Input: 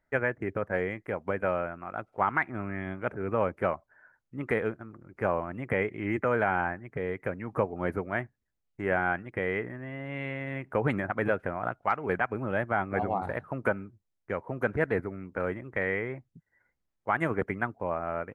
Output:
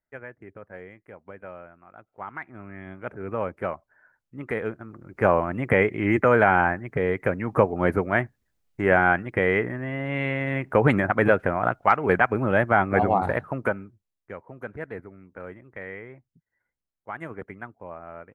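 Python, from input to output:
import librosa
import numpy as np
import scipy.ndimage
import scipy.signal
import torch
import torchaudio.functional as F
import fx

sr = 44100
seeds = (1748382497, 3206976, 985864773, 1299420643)

y = fx.gain(x, sr, db=fx.line((2.05, -12.0), (3.25, -1.0), (4.51, -1.0), (5.25, 8.5), (13.31, 8.5), (13.74, 1.5), (14.53, -8.0)))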